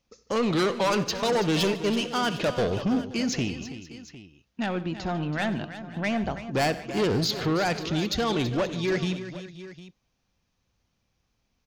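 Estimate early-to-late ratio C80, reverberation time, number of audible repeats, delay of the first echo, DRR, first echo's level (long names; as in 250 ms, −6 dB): no reverb audible, no reverb audible, 5, 66 ms, no reverb audible, −18.5 dB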